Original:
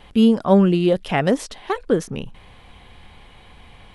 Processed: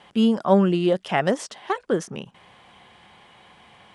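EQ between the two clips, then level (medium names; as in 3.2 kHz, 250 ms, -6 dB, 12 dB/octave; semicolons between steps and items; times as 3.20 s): cabinet simulation 200–9300 Hz, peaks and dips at 270 Hz -7 dB, 460 Hz -5 dB, 2.4 kHz -4 dB, 4 kHz -5 dB; 0.0 dB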